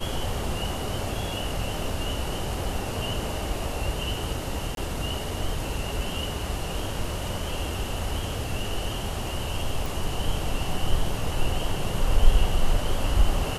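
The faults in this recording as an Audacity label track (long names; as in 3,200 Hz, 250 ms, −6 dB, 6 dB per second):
4.750000	4.770000	drop-out 22 ms
9.860000	9.860000	click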